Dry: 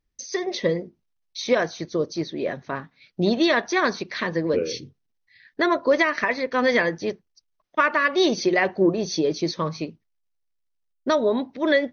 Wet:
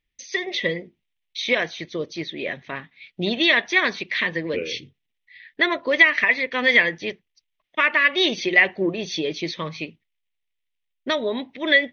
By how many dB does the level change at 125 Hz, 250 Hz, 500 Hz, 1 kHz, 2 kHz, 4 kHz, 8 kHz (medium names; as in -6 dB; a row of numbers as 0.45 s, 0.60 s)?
-4.0 dB, -4.0 dB, -4.0 dB, -4.0 dB, +6.5 dB, +6.0 dB, no reading